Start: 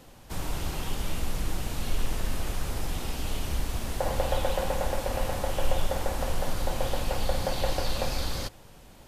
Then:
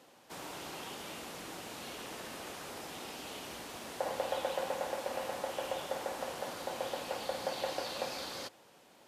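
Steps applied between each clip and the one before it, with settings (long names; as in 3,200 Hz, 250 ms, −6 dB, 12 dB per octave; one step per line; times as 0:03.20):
high-pass filter 300 Hz 12 dB per octave
high-shelf EQ 9,300 Hz −6.5 dB
level −5 dB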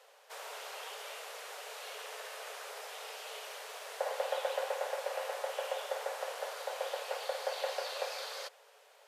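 Chebyshev high-pass with heavy ripple 420 Hz, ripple 3 dB
level +2 dB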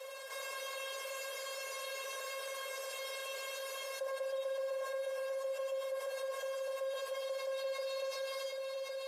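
tuned comb filter 540 Hz, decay 0.2 s, harmonics all, mix 100%
on a send: echo machine with several playback heads 369 ms, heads all three, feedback 55%, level −16 dB
on the sum: envelope flattener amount 70%
level +2.5 dB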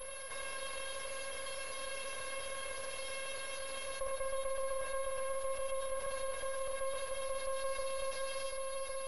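half-wave rectification
switching amplifier with a slow clock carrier 11,000 Hz
level +4.5 dB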